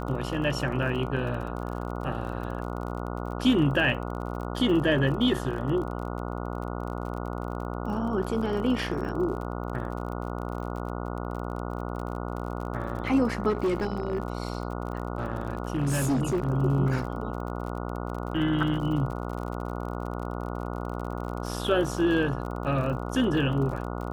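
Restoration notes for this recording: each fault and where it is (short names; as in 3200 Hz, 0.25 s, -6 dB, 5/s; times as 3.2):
buzz 60 Hz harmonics 24 -33 dBFS
crackle 44/s -35 dBFS
13.49–16.49 clipped -21.5 dBFS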